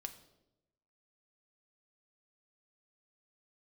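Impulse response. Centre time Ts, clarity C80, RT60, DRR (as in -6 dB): 9 ms, 15.0 dB, 0.90 s, 6.0 dB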